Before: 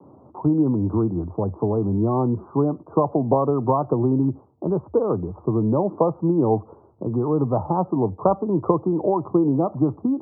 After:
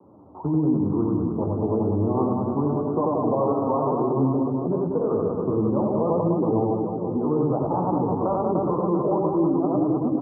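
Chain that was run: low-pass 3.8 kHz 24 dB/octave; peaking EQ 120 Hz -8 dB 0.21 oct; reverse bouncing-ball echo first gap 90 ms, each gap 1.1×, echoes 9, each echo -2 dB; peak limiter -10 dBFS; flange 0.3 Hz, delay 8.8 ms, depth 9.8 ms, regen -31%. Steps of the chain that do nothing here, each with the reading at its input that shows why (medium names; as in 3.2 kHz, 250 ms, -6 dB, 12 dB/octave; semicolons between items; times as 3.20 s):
low-pass 3.8 kHz: input has nothing above 1.3 kHz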